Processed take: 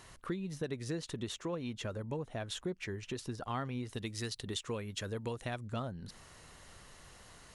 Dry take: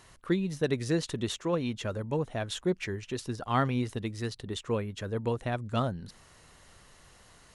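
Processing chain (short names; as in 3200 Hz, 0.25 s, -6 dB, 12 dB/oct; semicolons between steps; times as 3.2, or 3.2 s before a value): 3.93–5.65 high shelf 2200 Hz +10 dB; compressor 3:1, threshold -39 dBFS, peak gain reduction 13 dB; gain +1 dB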